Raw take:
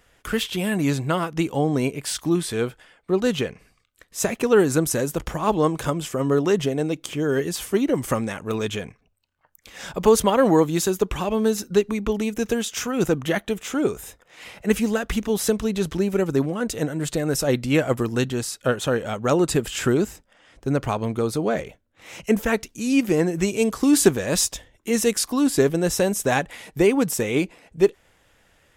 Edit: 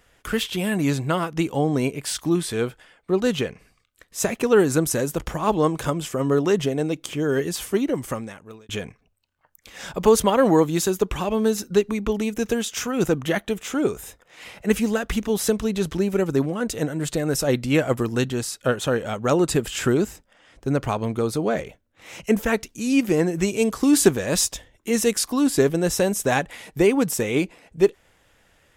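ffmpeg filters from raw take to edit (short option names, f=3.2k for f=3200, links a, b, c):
-filter_complex "[0:a]asplit=2[a][b];[a]atrim=end=8.69,asetpts=PTS-STARTPTS,afade=t=out:st=7.67:d=1.02[c];[b]atrim=start=8.69,asetpts=PTS-STARTPTS,afade=t=in:d=0.004:c=hsin[d];[c][d]concat=n=2:v=0:a=1"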